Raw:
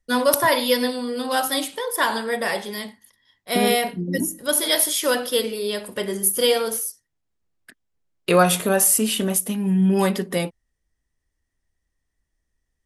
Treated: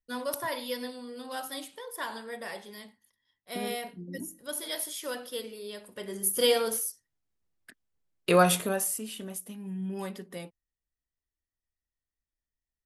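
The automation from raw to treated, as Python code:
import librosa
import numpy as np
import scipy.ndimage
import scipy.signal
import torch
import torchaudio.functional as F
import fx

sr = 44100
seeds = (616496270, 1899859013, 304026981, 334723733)

y = fx.gain(x, sr, db=fx.line((5.93, -15.0), (6.42, -5.0), (8.51, -5.0), (9.02, -17.0)))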